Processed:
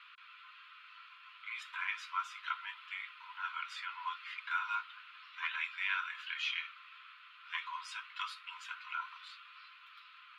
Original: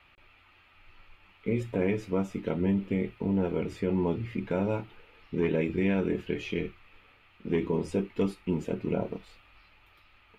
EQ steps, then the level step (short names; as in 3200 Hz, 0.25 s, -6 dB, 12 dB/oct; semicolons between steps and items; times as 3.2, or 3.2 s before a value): rippled Chebyshev high-pass 1000 Hz, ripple 9 dB; LPF 2200 Hz 6 dB/oct; +13.5 dB